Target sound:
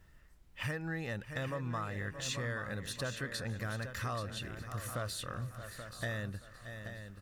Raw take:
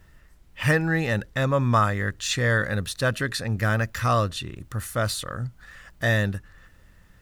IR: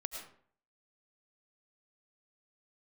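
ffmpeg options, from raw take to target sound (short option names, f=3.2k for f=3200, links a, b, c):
-filter_complex "[0:a]asplit=2[a][b];[b]aecho=0:1:622|1244|1866|2488|3110:0.141|0.0735|0.0382|0.0199|0.0103[c];[a][c]amix=inputs=2:normalize=0,acompressor=threshold=-27dB:ratio=6,asplit=2[d][e];[e]aecho=0:1:830:0.335[f];[d][f]amix=inputs=2:normalize=0,volume=-8dB"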